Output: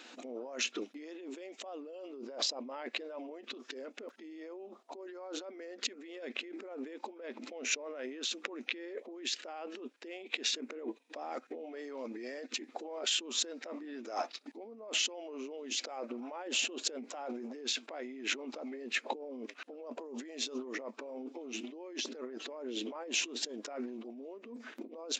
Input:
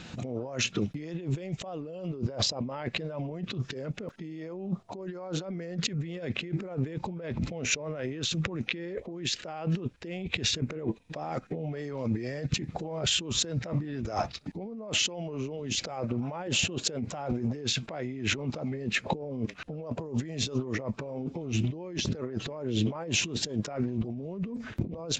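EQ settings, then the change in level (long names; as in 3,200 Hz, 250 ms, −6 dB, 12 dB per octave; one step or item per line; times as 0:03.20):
linear-phase brick-wall high-pass 230 Hz
low-shelf EQ 380 Hz −4 dB
−4.5 dB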